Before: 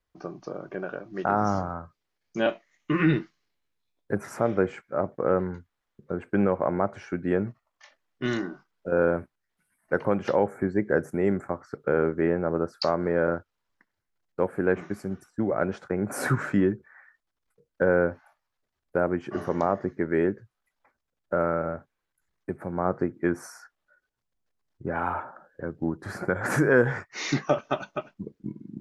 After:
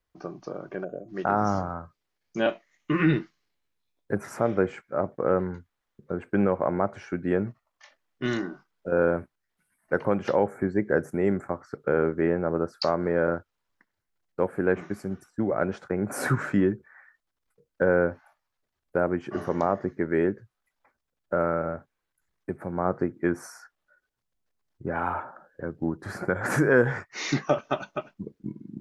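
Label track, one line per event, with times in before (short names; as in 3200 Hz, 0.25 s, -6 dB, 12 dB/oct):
0.840000	1.080000	spectral gain 750–6300 Hz -22 dB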